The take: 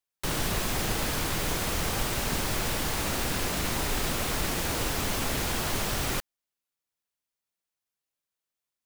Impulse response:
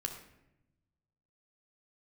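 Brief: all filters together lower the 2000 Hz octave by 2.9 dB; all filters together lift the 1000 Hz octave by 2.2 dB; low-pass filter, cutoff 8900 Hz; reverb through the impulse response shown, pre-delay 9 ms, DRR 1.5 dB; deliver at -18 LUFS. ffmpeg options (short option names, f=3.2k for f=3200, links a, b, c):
-filter_complex "[0:a]lowpass=8.9k,equalizer=f=1k:t=o:g=4,equalizer=f=2k:t=o:g=-5,asplit=2[a][b];[1:a]atrim=start_sample=2205,adelay=9[c];[b][c]afir=irnorm=-1:irlink=0,volume=-2dB[d];[a][d]amix=inputs=2:normalize=0,volume=10dB"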